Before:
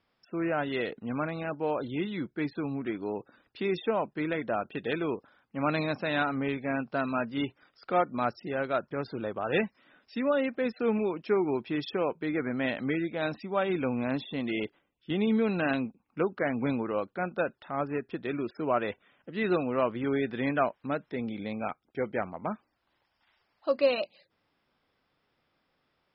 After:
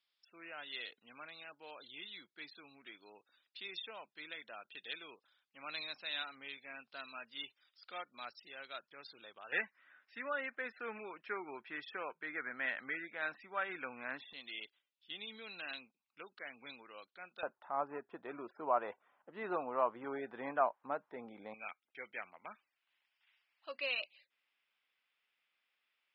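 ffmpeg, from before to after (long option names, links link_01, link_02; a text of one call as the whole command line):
ffmpeg -i in.wav -af "asetnsamples=nb_out_samples=441:pad=0,asendcmd='9.52 bandpass f 1700;14.33 bandpass f 4000;17.43 bandpass f 920;21.54 bandpass f 2600',bandpass=frequency=3800:width_type=q:width=2.3:csg=0" out.wav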